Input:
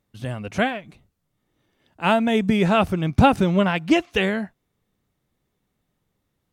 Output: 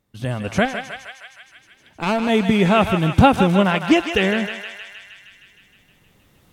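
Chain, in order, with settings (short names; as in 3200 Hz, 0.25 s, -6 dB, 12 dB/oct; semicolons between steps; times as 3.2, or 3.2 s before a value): recorder AGC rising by 7.2 dB/s; 0.65–2.29 tube stage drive 16 dB, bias 0.75; thinning echo 0.156 s, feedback 74%, high-pass 810 Hz, level -6.5 dB; gain +2.5 dB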